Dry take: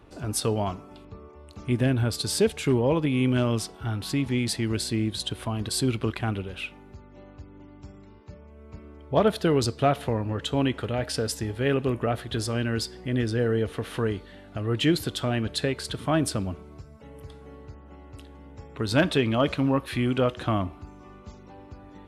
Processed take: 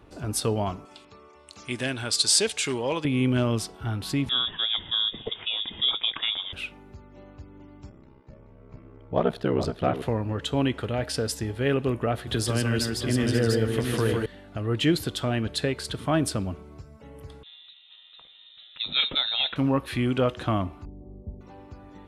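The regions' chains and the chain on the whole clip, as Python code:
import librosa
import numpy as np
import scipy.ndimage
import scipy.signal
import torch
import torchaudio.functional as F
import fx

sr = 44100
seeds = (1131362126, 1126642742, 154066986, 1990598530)

y = fx.chain(x, sr, fx.lowpass(hz=8600.0, slope=24),
    fx.tilt_eq(slope=4.0), at=(0.85, 3.05))
y = fx.chain(y, sr, fx.highpass(hz=100.0, slope=12),
    fx.echo_single(ms=261, db=-23.5),
    fx.freq_invert(carrier_hz=3600), at=(4.29, 6.53))
y = fx.chain(y, sr, fx.high_shelf(hz=4500.0, db=-12.0),
    fx.ring_mod(carrier_hz=32.0),
    fx.echo_single(ms=428, db=-9.5), at=(7.89, 10.02))
y = fx.chain(y, sr, fx.high_shelf(hz=8100.0, db=8.5),
    fx.echo_multitap(ms=(44, 152, 533, 694), db=(-18.0, -4.5, -12.5, -5.5)),
    fx.band_squash(depth_pct=40), at=(12.27, 14.26))
y = fx.chain(y, sr, fx.highpass(hz=130.0, slope=24),
    fx.tube_stage(drive_db=12.0, bias=0.6),
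    fx.freq_invert(carrier_hz=3900), at=(17.43, 19.56))
y = fx.chain(y, sr, fx.cheby2_lowpass(hz=1300.0, order=4, stop_db=40),
    fx.low_shelf(hz=130.0, db=9.5), at=(20.85, 21.41))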